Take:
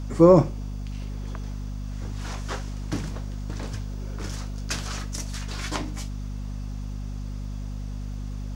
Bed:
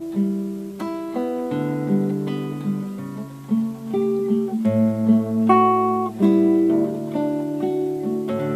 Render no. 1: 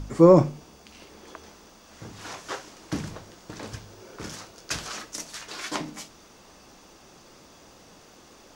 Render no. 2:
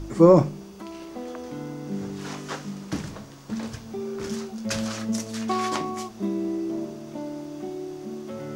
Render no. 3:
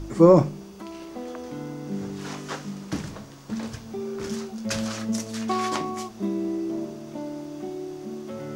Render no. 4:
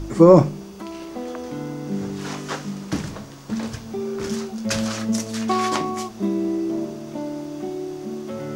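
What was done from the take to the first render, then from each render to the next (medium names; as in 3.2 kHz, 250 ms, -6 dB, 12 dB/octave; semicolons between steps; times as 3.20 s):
de-hum 50 Hz, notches 5
add bed -11.5 dB
no audible change
trim +4.5 dB; peak limiter -1 dBFS, peak gain reduction 3 dB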